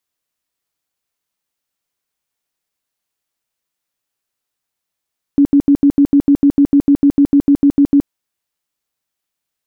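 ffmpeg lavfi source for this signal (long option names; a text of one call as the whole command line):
ffmpeg -f lavfi -i "aevalsrc='0.531*sin(2*PI*283*mod(t,0.15))*lt(mod(t,0.15),20/283)':duration=2.7:sample_rate=44100" out.wav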